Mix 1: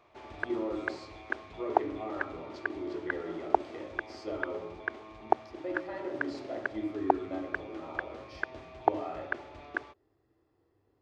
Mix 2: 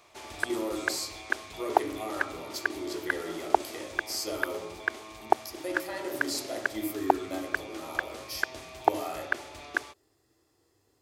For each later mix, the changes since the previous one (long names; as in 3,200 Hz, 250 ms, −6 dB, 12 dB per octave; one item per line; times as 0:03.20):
speech: add high-shelf EQ 7,600 Hz +11.5 dB
master: remove head-to-tape spacing loss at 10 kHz 32 dB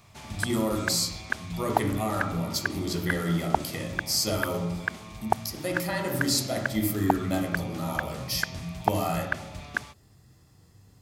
speech +8.0 dB
master: add low shelf with overshoot 250 Hz +11 dB, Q 3